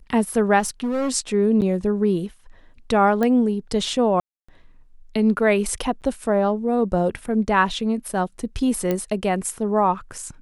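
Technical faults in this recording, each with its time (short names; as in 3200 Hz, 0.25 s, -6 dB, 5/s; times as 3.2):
0.59–1.12 clipped -20 dBFS
1.61–1.62 gap 8.5 ms
3.23 pop -11 dBFS
4.2–4.49 gap 0.285 s
6.01–6.02 gap 8.7 ms
8.91 pop -10 dBFS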